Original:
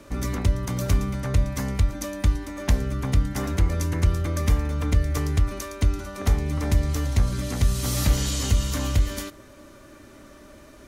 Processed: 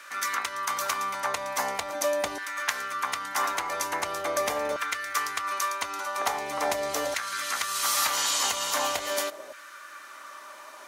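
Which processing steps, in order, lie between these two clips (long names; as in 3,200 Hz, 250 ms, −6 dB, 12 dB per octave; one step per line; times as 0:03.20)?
in parallel at −2.5 dB: brickwall limiter −19 dBFS, peak gain reduction 10 dB
on the sum: auto-filter high-pass saw down 0.42 Hz 600–1,500 Hz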